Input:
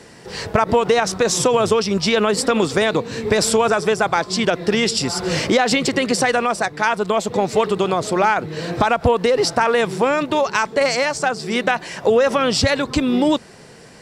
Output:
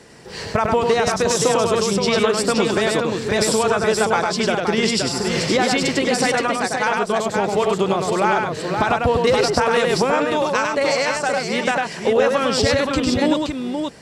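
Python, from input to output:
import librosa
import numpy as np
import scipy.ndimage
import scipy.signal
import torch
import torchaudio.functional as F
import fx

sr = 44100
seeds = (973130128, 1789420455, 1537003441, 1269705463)

y = fx.echo_multitap(x, sr, ms=(100, 522), db=(-3.5, -5.0))
y = fx.band_squash(y, sr, depth_pct=100, at=(9.27, 10.03))
y = F.gain(torch.from_numpy(y), -3.0).numpy()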